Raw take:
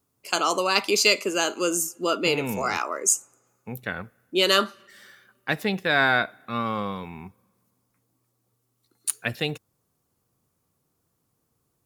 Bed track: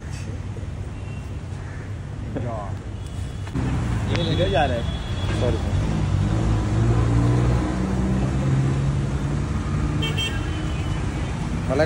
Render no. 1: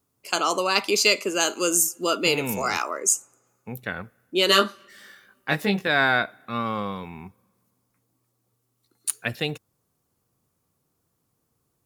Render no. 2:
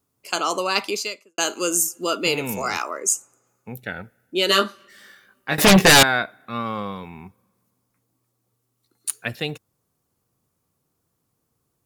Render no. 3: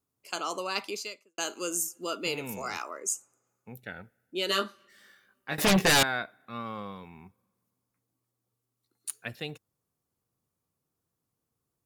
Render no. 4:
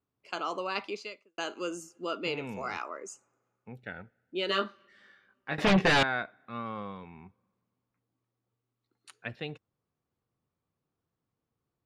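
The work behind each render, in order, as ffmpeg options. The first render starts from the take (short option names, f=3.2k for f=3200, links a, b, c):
-filter_complex "[0:a]asettb=1/sr,asplit=3[a][b][c];[a]atrim=end=1.404[d];[b]atrim=start=1.4:end=2.91,asetpts=PTS-STARTPTS,afade=t=in:d=0.004:c=qsin,afade=t=out:st=1.506:d=0.004:c=qsin,highshelf=f=4.3k:g=7.5[e];[c]atrim=start=2.906[f];[d][e]acrossfade=d=0.004:c1=hsin:c2=qsin[g];[g][f]acrossfade=d=0.004:c1=qsin:c2=hsin,asettb=1/sr,asplit=3[h][i][j];[h]atrim=end=4.474[k];[i]atrim=start=4.47:end=5.88,asetpts=PTS-STARTPTS,afade=t=in:d=0.004:c=qsin,afade=t=out:st=1.406:d=0.004:c=qsin,asplit=2[l][m];[m]adelay=20,volume=-2.5dB[n];[l][n]amix=inputs=2:normalize=0,atrim=end_sample=62181[o];[j]atrim=start=5.876[p];[k][o]acrossfade=d=0.004:c1=hsin:c2=qsin[q];[q][p]acrossfade=d=0.004:c1=qsin:c2=hsin"
-filter_complex "[0:a]asettb=1/sr,asplit=3[a][b][c];[a]atrim=end=3.754[d];[b]atrim=start=3.75:end=4.51,asetpts=PTS-STARTPTS,afade=t=in:d=0.004:c=qsin,afade=t=out:st=0.756:d=0.004:c=qsin,asuperstop=centerf=1100:order=8:qfactor=3.9[e];[c]atrim=start=4.506[f];[d][e]acrossfade=d=0.004:c1=hsin:c2=qsin[g];[g][f]acrossfade=d=0.004:c1=qsin:c2=hsin,asettb=1/sr,asplit=3[h][i][j];[h]atrim=end=5.584[k];[i]atrim=start=5.58:end=6.03,asetpts=PTS-STARTPTS,afade=t=in:d=0.004:c=qsin,afade=t=out:st=0.446:d=0.004:c=qsin,aeval=exprs='0.422*sin(PI/2*6.31*val(0)/0.422)':c=same[l];[j]atrim=start=6.026[m];[k][l]acrossfade=d=0.004:c1=hsin:c2=qsin[n];[n][m]acrossfade=d=0.004:c1=qsin:c2=hsin,asplit=2[o][p];[o]atrim=end=1.38,asetpts=PTS-STARTPTS,afade=t=out:st=0.83:d=0.55:c=qua[q];[p]atrim=start=1.38,asetpts=PTS-STARTPTS,afade=t=in:d=0.004:c=hsin[r];[q][r]concat=n=2:v=0:a=1"
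-af "volume=-10dB"
-af "lowpass=3.1k"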